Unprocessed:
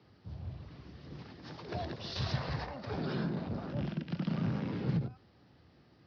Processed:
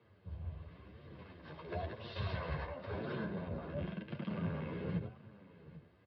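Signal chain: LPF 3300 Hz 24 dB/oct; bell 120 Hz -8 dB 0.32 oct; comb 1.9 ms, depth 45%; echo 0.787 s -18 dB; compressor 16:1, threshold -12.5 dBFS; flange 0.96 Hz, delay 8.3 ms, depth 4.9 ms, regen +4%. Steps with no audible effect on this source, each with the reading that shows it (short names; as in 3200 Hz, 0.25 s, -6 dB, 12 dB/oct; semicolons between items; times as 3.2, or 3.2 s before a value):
compressor, threshold -12.5 dBFS: input peak -23.0 dBFS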